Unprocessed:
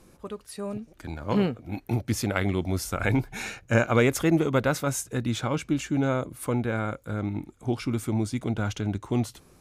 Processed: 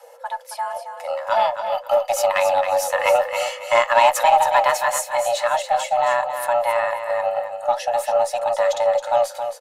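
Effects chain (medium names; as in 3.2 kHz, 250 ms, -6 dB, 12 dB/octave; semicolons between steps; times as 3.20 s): bass shelf 160 Hz +6 dB; comb 2.4 ms, depth 48%; frequency shift +470 Hz; Chebyshev shaper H 5 -25 dB, 8 -39 dB, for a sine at -5 dBFS; flange 0.48 Hz, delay 2.2 ms, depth 9.7 ms, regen -65%; feedback delay 271 ms, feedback 25%, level -8.5 dB; trim +7 dB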